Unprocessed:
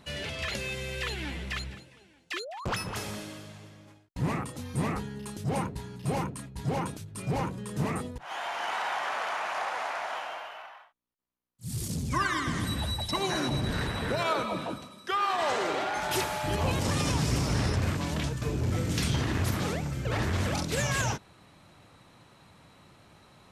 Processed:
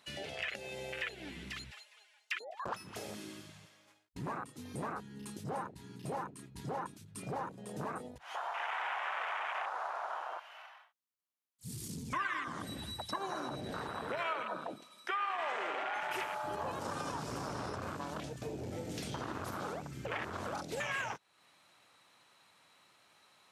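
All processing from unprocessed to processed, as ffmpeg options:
-filter_complex "[0:a]asettb=1/sr,asplit=3[s0][s1][s2];[s0]atrim=end=1.714[s3];[s1]atrim=start=1.71:end=2.35,asetpts=PTS-STARTPTS,afade=t=in:d=0.004:c=qsin,afade=t=out:st=0.636:d=0.004:c=qsin,highpass=f=560:w=0.5412,highpass=f=560:w=1.3066,aecho=1:1:4.8:0.91,atrim=end_sample=28224[s4];[s2]atrim=start=2.346[s5];[s3][s4]acrossfade=d=0.004:c1=hsin:c2=qsin[s6];[s6][s5]acrossfade=d=0.004:c1=qsin:c2=hsin,afwtdn=0.0251,highpass=f=1400:p=1,acompressor=threshold=0.00178:ratio=2.5,volume=4.47"

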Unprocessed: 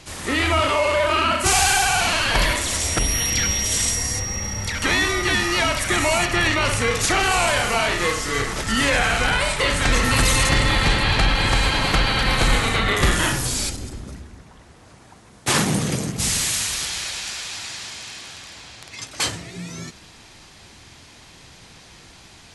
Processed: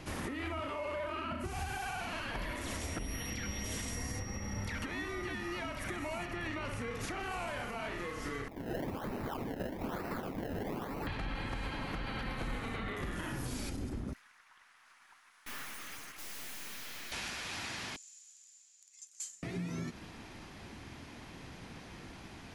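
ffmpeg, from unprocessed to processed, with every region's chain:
-filter_complex "[0:a]asettb=1/sr,asplit=3[s0][s1][s2];[s0]atrim=end=1.314[s3];[s1]atrim=start=1.31:end=1.78,asetpts=PTS-STARTPTS,afade=t=in:d=0.004:c=qsin,afade=t=out:st=0.466:d=0.004:c=qsin,highpass=43,lowshelf=f=260:g=12[s4];[s2]atrim=start=1.776[s5];[s3][s4]acrossfade=d=0.004:c1=hsin:c2=qsin[s6];[s6][s5]acrossfade=d=0.004:c1=qsin:c2=hsin,asettb=1/sr,asplit=3[s7][s8][s9];[s7]atrim=end=8.484[s10];[s8]atrim=start=8.48:end=11.07,asetpts=PTS-STARTPTS,afade=t=in:d=0.004:c=qsin,afade=t=out:st=2.586:d=0.004:c=qsin,asuperpass=centerf=3900:order=20:qfactor=1.4,acrusher=samples=26:mix=1:aa=0.000001:lfo=1:lforange=26:lforate=1.1[s11];[s9]atrim=start=11.066[s12];[s10][s11]acrossfade=d=0.004:c1=hsin:c2=qsin[s13];[s13][s12]acrossfade=d=0.004:c1=qsin:c2=hsin,asettb=1/sr,asplit=3[s14][s15][s16];[s14]atrim=end=14.134[s17];[s15]atrim=start=14.13:end=17.12,asetpts=PTS-STARTPTS,afade=t=in:d=0.004:c=qsin,afade=t=out:st=2.986:d=0.004:c=qsin,highpass=f=1200:w=0.5412,highpass=f=1200:w=1.3066,aeval=exprs='(tanh(70.8*val(0)+0.55)-tanh(0.55))/70.8':c=same[s18];[s16]atrim=start=17.116[s19];[s17][s18]acrossfade=d=0.004:c1=hsin:c2=qsin[s20];[s20][s19]acrossfade=d=0.004:c1=qsin:c2=hsin,asettb=1/sr,asplit=3[s21][s22][s23];[s21]atrim=end=17.964[s24];[s22]atrim=start=17.96:end=19.43,asetpts=PTS-STARTPTS,afade=t=in:d=0.004:c=qsin,afade=t=out:st=1.466:d=0.004:c=qsin,bandpass=f=7100:t=q:w=13,aemphasis=mode=production:type=50kf[s25];[s23]atrim=start=19.426[s26];[s24][s25]acrossfade=d=0.004:c1=hsin:c2=qsin[s27];[s27][s26]acrossfade=d=0.004:c1=qsin:c2=hsin,equalizer=f=250:t=o:w=1:g=6,equalizer=f=4000:t=o:w=1:g=-6,equalizer=f=8000:t=o:w=1:g=-11,acompressor=threshold=0.0224:ratio=4,alimiter=level_in=1.26:limit=0.0631:level=0:latency=1:release=238,volume=0.794,volume=0.75"

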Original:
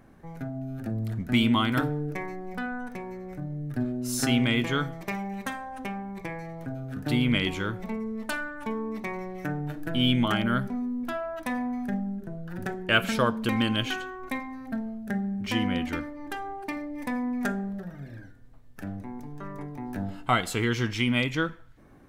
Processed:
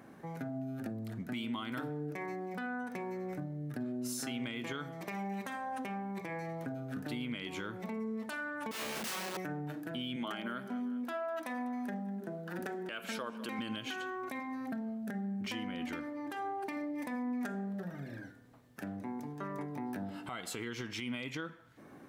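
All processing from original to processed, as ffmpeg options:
-filter_complex "[0:a]asettb=1/sr,asplit=3[s0][s1][s2];[s0]atrim=end=8.714[s3];[s1]atrim=start=8.71:end=9.37,asetpts=PTS-STARTPTS,afade=t=in:d=0.004:c=qsin,afade=t=out:st=0.656:d=0.004:c=qsin,asubboost=boost=5.5:cutoff=65,aeval=exprs='(mod(47.3*val(0)+1,2)-1)/47.3':c=same,asplit=2[s4][s5];[s5]adelay=32,volume=0.708[s6];[s4][s6]amix=inputs=2:normalize=0,atrim=end_sample=29106[s7];[s2]atrim=start=9.366[s8];[s3][s7]acrossfade=d=0.004:c1=hsin:c2=qsin[s9];[s9][s8]acrossfade=d=0.004:c1=qsin:c2=hsin,asettb=1/sr,asplit=3[s10][s11][s12];[s10]atrim=end=10.164[s13];[s11]atrim=start=10.16:end=13.59,asetpts=PTS-STARTPTS,afade=t=in:d=0.004:c=qsin,afade=t=out:st=3.426:d=0.004:c=qsin,highpass=230,aecho=1:1:198|396|594:0.0794|0.0326|0.0134,atrim=end_sample=151263[s14];[s12]atrim=start=13.586[s15];[s13][s14]acrossfade=d=0.004:c1=hsin:c2=qsin[s16];[s16][s15]acrossfade=d=0.004:c1=qsin:c2=hsin,asettb=1/sr,asplit=3[s17][s18][s19];[s17]atrim=end=19.764[s20];[s18]atrim=start=19.76:end=20.3,asetpts=PTS-STARTPTS,afade=t=in:d=0.004:c=qsin,afade=t=out:st=0.536:d=0.004:c=qsin,acompressor=mode=upward:threshold=0.02:ratio=2.5:attack=3.2:release=140:knee=2.83:detection=peak,bandreject=f=6800:w=8.8[s21];[s19]atrim=start=20.296[s22];[s20][s21]acrossfade=d=0.004:c1=hsin:c2=qsin[s23];[s23][s22]acrossfade=d=0.004:c1=qsin:c2=hsin,acompressor=threshold=0.0126:ratio=3,highpass=170,alimiter=level_in=2.37:limit=0.0631:level=0:latency=1:release=71,volume=0.422,volume=1.33"

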